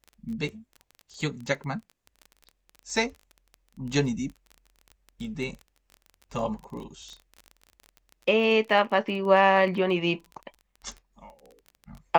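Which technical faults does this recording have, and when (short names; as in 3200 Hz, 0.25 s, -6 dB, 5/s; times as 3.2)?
crackle 23/s -34 dBFS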